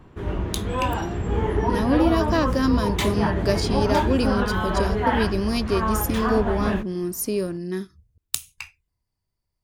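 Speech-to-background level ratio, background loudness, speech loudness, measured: -0.5 dB, -25.0 LUFS, -25.5 LUFS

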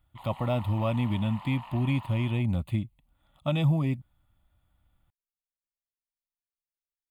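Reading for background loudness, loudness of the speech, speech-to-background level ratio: -45.5 LUFS, -29.0 LUFS, 16.5 dB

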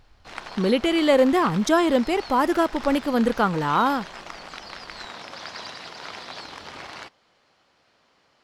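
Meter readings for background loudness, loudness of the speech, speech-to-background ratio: -38.0 LUFS, -21.5 LUFS, 16.5 dB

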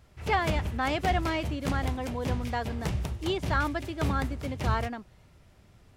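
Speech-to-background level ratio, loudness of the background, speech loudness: 2.0 dB, -34.0 LUFS, -32.0 LUFS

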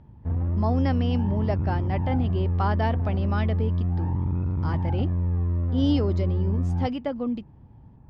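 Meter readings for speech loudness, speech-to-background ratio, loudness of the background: -29.5 LUFS, -3.0 dB, -26.5 LUFS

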